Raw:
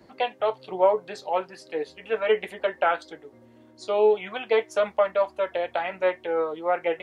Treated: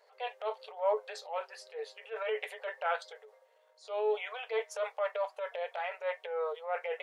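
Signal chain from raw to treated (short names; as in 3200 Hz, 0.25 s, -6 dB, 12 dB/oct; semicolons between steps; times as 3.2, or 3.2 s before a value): transient shaper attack -9 dB, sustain +5 dB; brick-wall FIR high-pass 410 Hz; gain -7.5 dB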